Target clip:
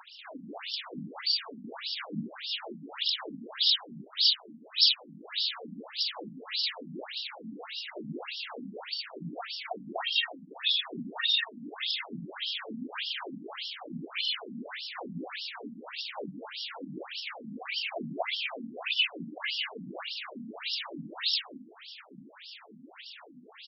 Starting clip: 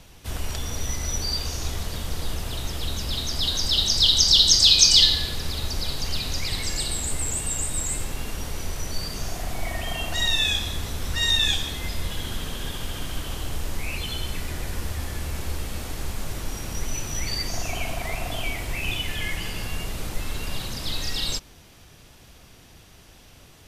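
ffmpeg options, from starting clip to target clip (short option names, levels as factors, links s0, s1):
-af "acompressor=threshold=0.0316:ratio=10,aphaser=in_gain=1:out_gain=1:delay=4.6:decay=0.7:speed=1:type=sinusoidal,aemphasis=mode=production:type=50fm,aecho=1:1:189.5|242:0.891|0.562,afftfilt=real='re*between(b*sr/1024,200*pow(4000/200,0.5+0.5*sin(2*PI*1.7*pts/sr))/1.41,200*pow(4000/200,0.5+0.5*sin(2*PI*1.7*pts/sr))*1.41)':imag='im*between(b*sr/1024,200*pow(4000/200,0.5+0.5*sin(2*PI*1.7*pts/sr))/1.41,200*pow(4000/200,0.5+0.5*sin(2*PI*1.7*pts/sr))*1.41)':win_size=1024:overlap=0.75,volume=1.41"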